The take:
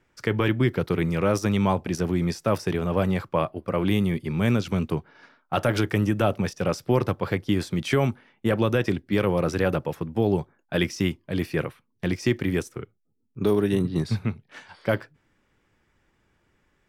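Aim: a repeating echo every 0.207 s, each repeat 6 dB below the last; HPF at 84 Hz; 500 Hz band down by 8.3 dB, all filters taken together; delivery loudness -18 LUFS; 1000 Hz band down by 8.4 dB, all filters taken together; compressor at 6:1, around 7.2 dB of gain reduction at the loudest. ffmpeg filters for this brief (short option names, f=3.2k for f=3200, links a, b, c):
-af "highpass=84,equalizer=f=500:t=o:g=-9,equalizer=f=1k:t=o:g=-8.5,acompressor=threshold=-28dB:ratio=6,aecho=1:1:207|414|621|828|1035|1242:0.501|0.251|0.125|0.0626|0.0313|0.0157,volume=15dB"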